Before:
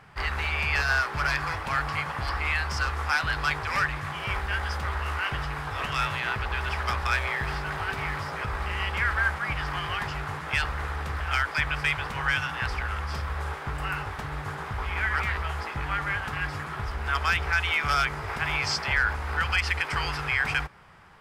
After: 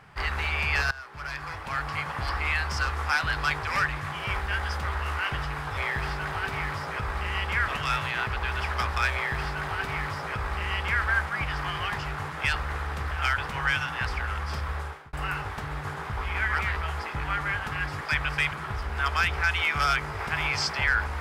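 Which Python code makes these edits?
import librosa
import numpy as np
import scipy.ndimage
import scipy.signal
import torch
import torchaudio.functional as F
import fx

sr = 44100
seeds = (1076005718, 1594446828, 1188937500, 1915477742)

y = fx.edit(x, sr, fx.fade_in_from(start_s=0.91, length_s=1.32, floor_db=-21.0),
    fx.duplicate(start_s=7.22, length_s=1.91, to_s=5.77),
    fx.move(start_s=11.47, length_s=0.52, to_s=16.62),
    fx.fade_out_span(start_s=13.35, length_s=0.39), tone=tone)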